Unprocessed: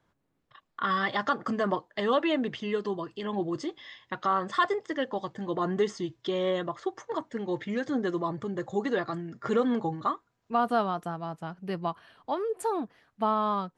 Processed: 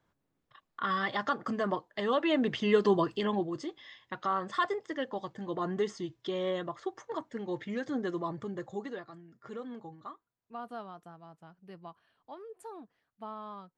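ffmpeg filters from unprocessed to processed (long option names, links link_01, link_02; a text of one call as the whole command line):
ffmpeg -i in.wav -af "volume=7.5dB,afade=type=in:start_time=2.2:duration=0.82:silence=0.281838,afade=type=out:start_time=3.02:duration=0.45:silence=0.251189,afade=type=out:start_time=8.48:duration=0.58:silence=0.266073" out.wav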